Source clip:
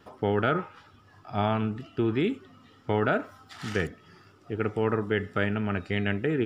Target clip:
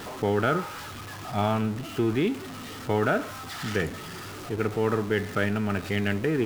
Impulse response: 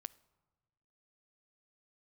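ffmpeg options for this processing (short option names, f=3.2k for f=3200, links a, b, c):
-af "aeval=exprs='val(0)+0.5*0.02*sgn(val(0))':c=same,bandreject=f=45.69:t=h:w=4,bandreject=f=91.38:t=h:w=4"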